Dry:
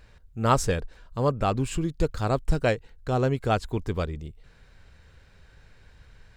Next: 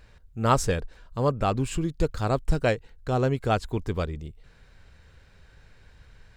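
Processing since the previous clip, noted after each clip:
no processing that can be heard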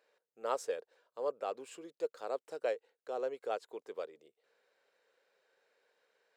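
four-pole ladder high-pass 420 Hz, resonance 55%
level −6 dB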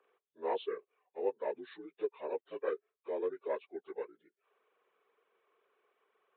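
partials spread apart or drawn together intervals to 81%
reverb reduction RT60 0.58 s
downsampling to 8,000 Hz
level +3 dB

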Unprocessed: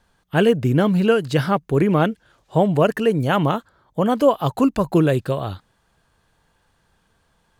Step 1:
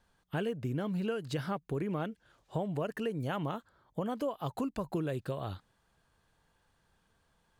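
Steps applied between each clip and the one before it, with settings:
downward compressor 4 to 1, threshold −24 dBFS, peak gain reduction 12 dB
level −8.5 dB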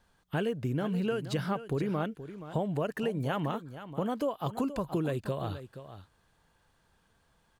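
single-tap delay 475 ms −12.5 dB
level +3 dB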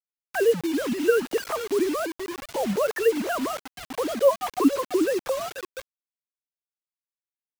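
three sine waves on the formant tracks
bit reduction 7 bits
level +7.5 dB

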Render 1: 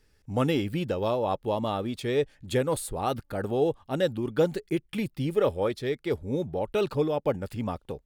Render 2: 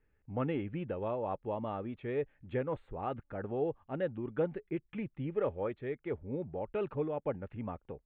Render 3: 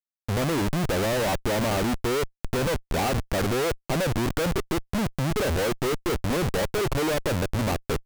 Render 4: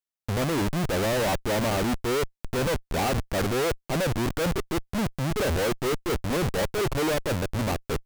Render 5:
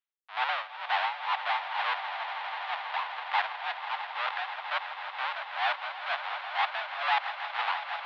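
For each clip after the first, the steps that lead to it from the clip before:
inverse Chebyshev low-pass filter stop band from 4,800 Hz, stop band 40 dB; level −8.5 dB
dynamic equaliser 650 Hz, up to +3 dB, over −48 dBFS, Q 1.1; in parallel at −1.5 dB: brickwall limiter −29.5 dBFS, peak gain reduction 10 dB; on the sum: comparator with hysteresis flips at −38.5 dBFS; level +7.5 dB
brickwall limiter −22.5 dBFS, peak gain reduction 4.5 dB
amplitude tremolo 2.1 Hz, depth 96%; echo that builds up and dies away 163 ms, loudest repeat 5, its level −13 dB; single-sideband voice off tune +250 Hz 590–3,500 Hz; level +4 dB

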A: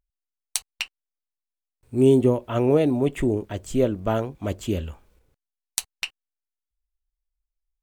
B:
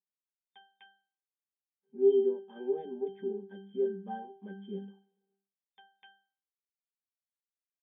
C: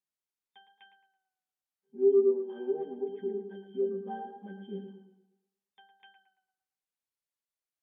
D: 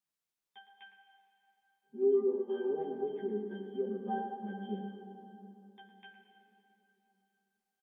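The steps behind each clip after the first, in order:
mains-hum notches 50/100/150/200 Hz; resonances in every octave G, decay 0.41 s; brick-wall band-pass 140–3,600 Hz; level +2.5 dB
treble cut that deepens with the level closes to 830 Hz, closed at −26 dBFS; tape delay 112 ms, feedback 45%, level −7.5 dB, low-pass 2,200 Hz
double-tracking delay 14 ms −4 dB; dense smooth reverb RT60 3.8 s, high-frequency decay 0.7×, DRR 6 dB

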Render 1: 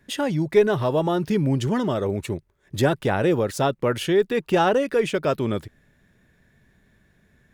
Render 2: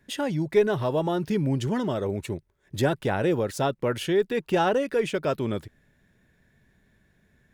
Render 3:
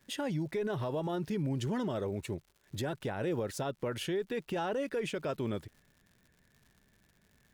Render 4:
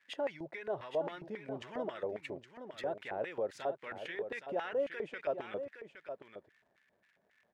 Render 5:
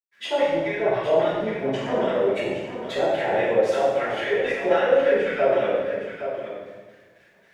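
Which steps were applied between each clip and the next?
notch filter 1,200 Hz, Q 18; level −3.5 dB
surface crackle 150 per second −46 dBFS; brickwall limiter −21 dBFS, peak gain reduction 11 dB; level −5.5 dB
auto-filter band-pass square 3.7 Hz 620–2,000 Hz; on a send: single-tap delay 816 ms −9 dB; on the sum: level +4.5 dB
convolution reverb RT60 1.3 s, pre-delay 114 ms; level +6.5 dB

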